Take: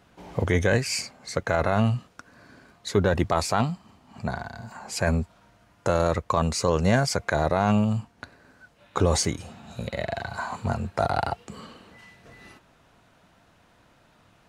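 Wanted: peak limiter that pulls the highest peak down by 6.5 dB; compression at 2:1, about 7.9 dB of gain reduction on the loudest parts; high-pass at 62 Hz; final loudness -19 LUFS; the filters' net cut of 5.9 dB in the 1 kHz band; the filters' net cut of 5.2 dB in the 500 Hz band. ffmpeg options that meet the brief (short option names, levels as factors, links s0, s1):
-af "highpass=62,equalizer=f=500:t=o:g=-4.5,equalizer=f=1000:t=o:g=-6.5,acompressor=threshold=0.0224:ratio=2,volume=6.68,alimiter=limit=0.531:level=0:latency=1"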